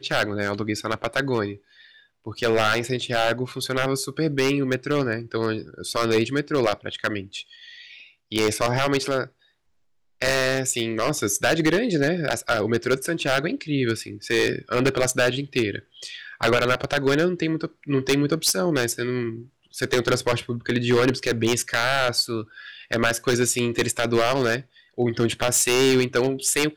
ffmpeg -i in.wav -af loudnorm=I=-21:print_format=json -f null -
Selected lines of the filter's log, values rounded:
"input_i" : "-22.8",
"input_tp" : "-9.6",
"input_lra" : "3.3",
"input_thresh" : "-33.2",